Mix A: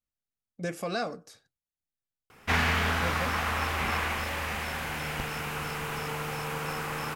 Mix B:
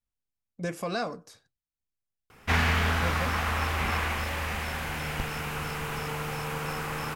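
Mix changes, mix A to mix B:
speech: remove band-stop 1 kHz, Q 6.7; master: add bass shelf 93 Hz +7.5 dB

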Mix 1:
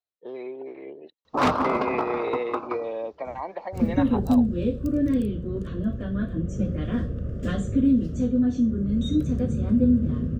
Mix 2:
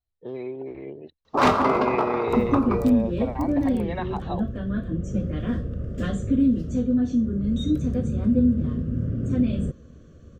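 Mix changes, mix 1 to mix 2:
speech: remove high-pass 350 Hz 12 dB/octave; second sound: entry -1.45 s; reverb: on, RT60 0.50 s

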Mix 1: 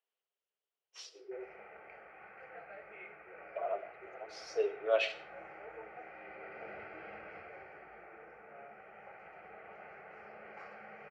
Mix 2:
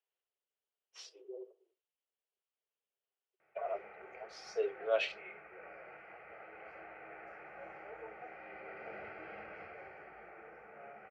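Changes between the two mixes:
speech: send off; background: entry +2.25 s

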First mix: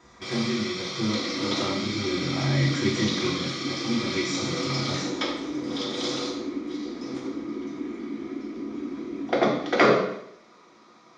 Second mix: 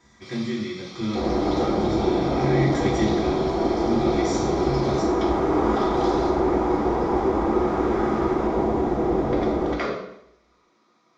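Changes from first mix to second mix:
first sound -9.5 dB; second sound: remove vowel filter i

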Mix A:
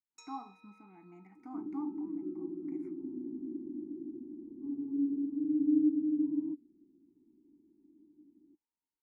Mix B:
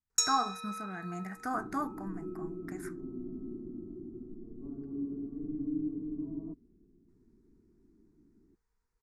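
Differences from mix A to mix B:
second sound -8.5 dB; master: remove vowel filter u

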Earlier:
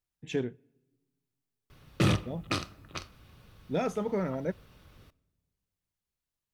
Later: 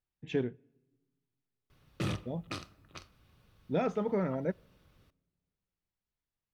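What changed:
speech: add distance through air 160 m; background -9.0 dB

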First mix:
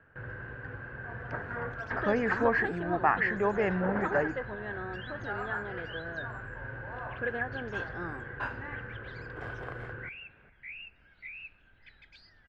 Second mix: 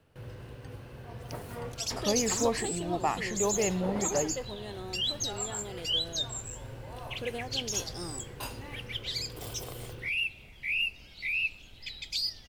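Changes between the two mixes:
second sound +11.0 dB; master: remove resonant low-pass 1.6 kHz, resonance Q 9.6

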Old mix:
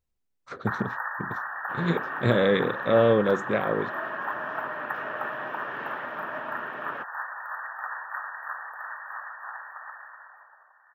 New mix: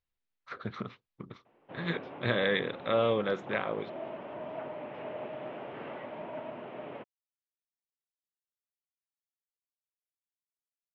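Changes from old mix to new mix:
speech: add tilt shelf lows -9.5 dB, about 1.4 kHz; first sound: muted; master: add distance through air 310 m

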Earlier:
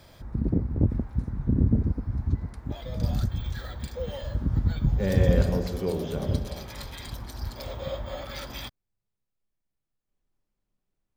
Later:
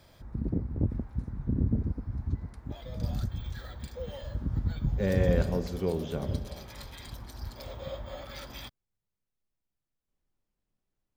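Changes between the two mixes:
speech: send -6.5 dB; background -5.5 dB

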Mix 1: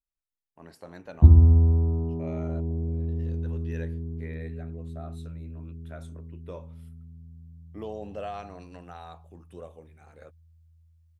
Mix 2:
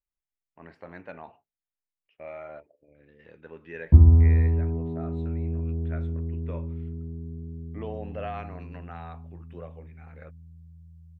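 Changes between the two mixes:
speech: add resonant low-pass 2.2 kHz, resonance Q 2.2; background: entry +2.70 s

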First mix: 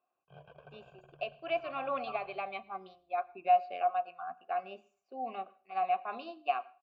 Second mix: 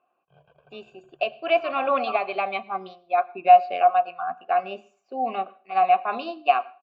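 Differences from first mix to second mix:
speech +12.0 dB; background -4.0 dB

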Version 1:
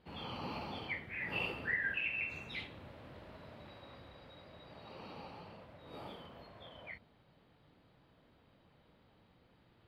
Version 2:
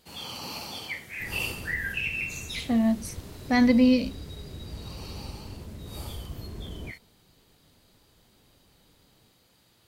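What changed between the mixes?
speech: unmuted; second sound: remove Chebyshev high-pass 530 Hz, order 5; master: remove distance through air 460 m

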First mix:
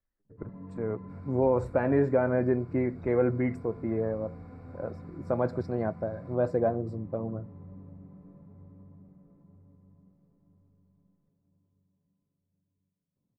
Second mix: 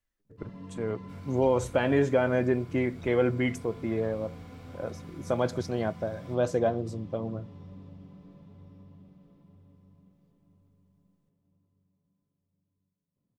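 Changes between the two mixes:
first sound: remove distance through air 250 m; master: remove boxcar filter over 14 samples

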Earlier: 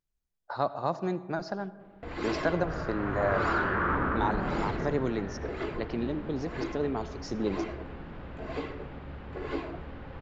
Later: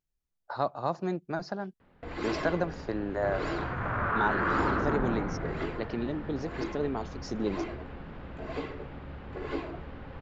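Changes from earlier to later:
second sound: entry +0.65 s; reverb: off

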